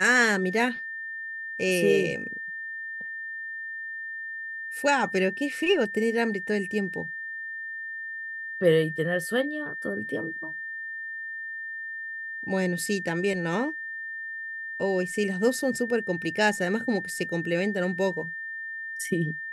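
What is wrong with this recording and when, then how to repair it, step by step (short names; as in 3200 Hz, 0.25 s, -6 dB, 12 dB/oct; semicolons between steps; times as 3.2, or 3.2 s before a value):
tone 1800 Hz -33 dBFS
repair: notch 1800 Hz, Q 30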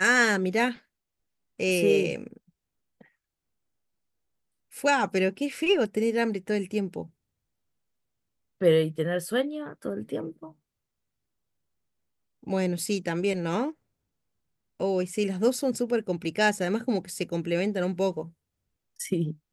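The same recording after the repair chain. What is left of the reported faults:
none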